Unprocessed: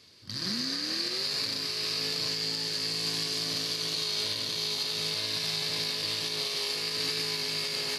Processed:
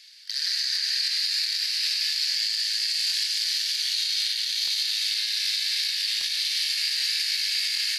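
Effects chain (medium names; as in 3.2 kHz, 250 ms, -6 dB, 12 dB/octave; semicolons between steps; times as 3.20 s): elliptic high-pass 1.7 kHz, stop band 80 dB; peak limiter -23 dBFS, peak gain reduction 4.5 dB; crackling interface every 0.78 s, samples 1024, repeat, from 0.73 s; trim +7.5 dB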